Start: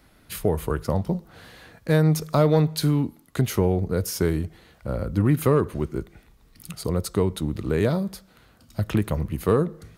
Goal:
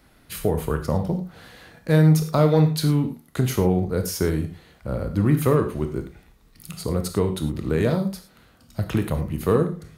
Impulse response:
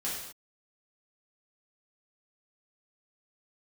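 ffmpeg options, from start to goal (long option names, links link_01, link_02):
-filter_complex "[0:a]asplit=2[link_01][link_02];[1:a]atrim=start_sample=2205,afade=type=out:start_time=0.14:duration=0.01,atrim=end_sample=6615,adelay=26[link_03];[link_02][link_03]afir=irnorm=-1:irlink=0,volume=-10dB[link_04];[link_01][link_04]amix=inputs=2:normalize=0"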